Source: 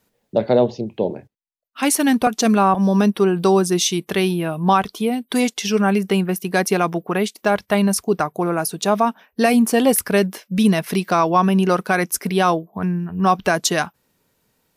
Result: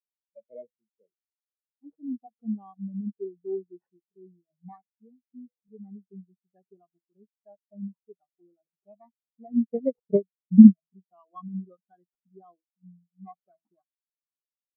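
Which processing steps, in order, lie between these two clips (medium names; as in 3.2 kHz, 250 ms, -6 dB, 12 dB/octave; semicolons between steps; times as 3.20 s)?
de-hum 164.6 Hz, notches 4; 9.55–10.82 s: transient shaper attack +12 dB, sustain -8 dB; decimation with a swept rate 13×, swing 60% 0.23 Hz; spectral contrast expander 4:1; trim -2.5 dB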